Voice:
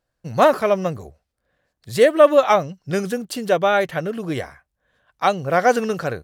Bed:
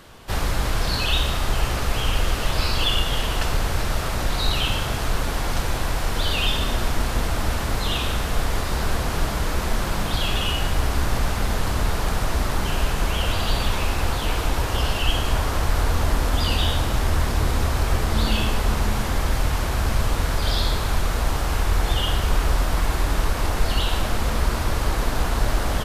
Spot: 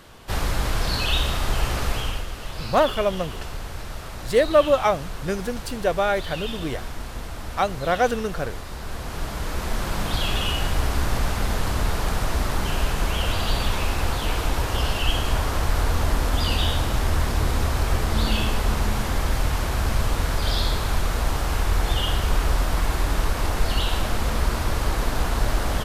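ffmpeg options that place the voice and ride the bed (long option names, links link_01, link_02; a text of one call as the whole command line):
ffmpeg -i stem1.wav -i stem2.wav -filter_complex "[0:a]adelay=2350,volume=-4.5dB[link_01];[1:a]volume=8.5dB,afade=type=out:start_time=1.87:duration=0.39:silence=0.334965,afade=type=in:start_time=8.82:duration=1.31:silence=0.334965[link_02];[link_01][link_02]amix=inputs=2:normalize=0" out.wav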